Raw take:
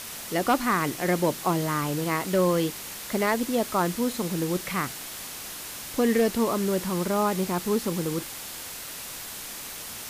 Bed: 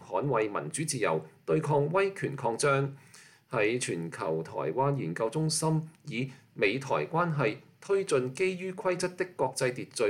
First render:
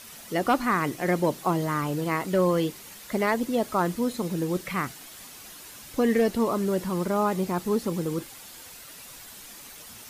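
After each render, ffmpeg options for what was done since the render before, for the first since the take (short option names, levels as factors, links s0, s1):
-af "afftdn=nr=9:nf=-38"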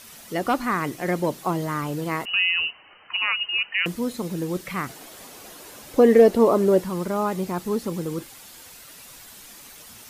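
-filter_complex "[0:a]asettb=1/sr,asplit=3[s0][s1][s2];[s0]atrim=end=2.254[s3];[s1]atrim=start=2.25:end=3.86,asetpts=PTS-STARTPTS,afade=t=in:d=0.004:c=qsin,afade=t=out:st=1.606:d=0.004:c=qsin,lowpass=f=2600:t=q:w=0.5098,lowpass=f=2600:t=q:w=0.6013,lowpass=f=2600:t=q:w=0.9,lowpass=f=2600:t=q:w=2.563,afreqshift=-3100[s4];[s2]atrim=start=3.856[s5];[s3][s4]acrossfade=d=0.004:c1=hsin:c2=qsin[s6];[s6][s5]acrossfade=d=0.004:c1=qsin:c2=hsin,asettb=1/sr,asplit=3[s7][s8][s9];[s7]atrim=end=4.894[s10];[s8]atrim=start=4.89:end=6.81,asetpts=PTS-STARTPTS,afade=t=in:d=0.004:c=qsin,afade=t=out:st=1.916:d=0.004:c=qsin,equalizer=f=500:w=0.67:g=10.5[s11];[s9]atrim=start=6.806[s12];[s10][s11]acrossfade=d=0.004:c1=hsin:c2=qsin[s13];[s13][s12]acrossfade=d=0.004:c1=qsin:c2=hsin"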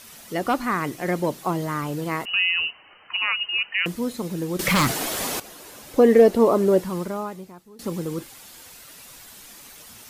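-filter_complex "[0:a]asettb=1/sr,asplit=3[s0][s1][s2];[s0]atrim=end=4.594[s3];[s1]atrim=start=4.59:end=5.4,asetpts=PTS-STARTPTS,afade=t=in:d=0.004:c=qsin,afade=t=out:st=0.806:d=0.004:c=qsin,aeval=exprs='0.178*sin(PI/2*3.98*val(0)/0.178)':c=same[s4];[s2]atrim=start=5.396[s5];[s3][s4]acrossfade=d=0.004:c1=hsin:c2=qsin[s6];[s6][s5]acrossfade=d=0.004:c1=qsin:c2=hsin,asplit=2[s7][s8];[s7]atrim=end=7.79,asetpts=PTS-STARTPTS,afade=t=out:st=6.97:d=0.82:c=qua:silence=0.0668344[s9];[s8]atrim=start=7.79,asetpts=PTS-STARTPTS,afade=t=in:d=0.004:c=hsin:silence=0.0668344[s10];[s9][s10]concat=n=2:v=0:a=1"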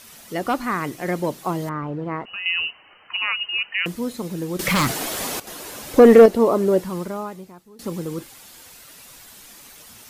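-filter_complex "[0:a]asettb=1/sr,asplit=3[s0][s1][s2];[s0]atrim=end=1.694[s3];[s1]atrim=start=1.69:end=2.46,asetpts=PTS-STARTPTS,afade=t=in:d=0.004:c=qsin,afade=t=out:st=0.766:d=0.004:c=qsin,lowpass=1500[s4];[s2]atrim=start=2.456[s5];[s3][s4]acrossfade=d=0.004:c1=hsin:c2=qsin[s6];[s6][s5]acrossfade=d=0.004:c1=qsin:c2=hsin,asettb=1/sr,asplit=3[s7][s8][s9];[s7]atrim=end=5.474[s10];[s8]atrim=start=5.47:end=6.26,asetpts=PTS-STARTPTS,afade=t=in:d=0.004:c=qsin,afade=t=out:st=0.786:d=0.004:c=qsin,acontrast=88[s11];[s9]atrim=start=6.256[s12];[s10][s11]acrossfade=d=0.004:c1=hsin:c2=qsin[s13];[s13][s12]acrossfade=d=0.004:c1=qsin:c2=hsin"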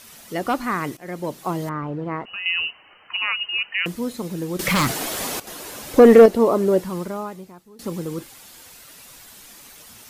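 -filter_complex "[0:a]asplit=2[s0][s1];[s0]atrim=end=0.97,asetpts=PTS-STARTPTS,afade=t=out:st=0.966:d=0.004:c=hsin:silence=0.16788[s2];[s1]atrim=start=0.97,asetpts=PTS-STARTPTS,afade=t=in:d=0.74:c=qsin:silence=0.16788[s3];[s2][s3]concat=n=2:v=0:a=1"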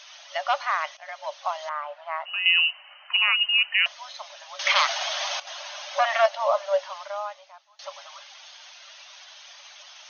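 -af "afftfilt=real='re*between(b*sr/4096,550,6600)':imag='im*between(b*sr/4096,550,6600)':win_size=4096:overlap=0.75,equalizer=f=3200:t=o:w=0.53:g=6.5"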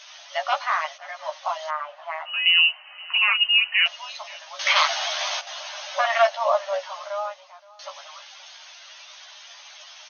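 -filter_complex "[0:a]asplit=2[s0][s1];[s1]adelay=13,volume=0.75[s2];[s0][s2]amix=inputs=2:normalize=0,aecho=1:1:522:0.075"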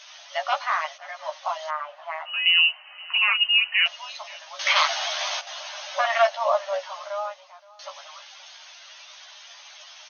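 -af "volume=0.891"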